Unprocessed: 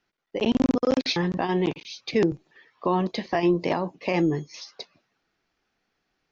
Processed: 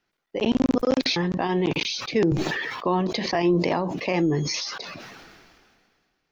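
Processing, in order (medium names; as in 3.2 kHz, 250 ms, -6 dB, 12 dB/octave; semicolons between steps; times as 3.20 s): decay stretcher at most 29 dB/s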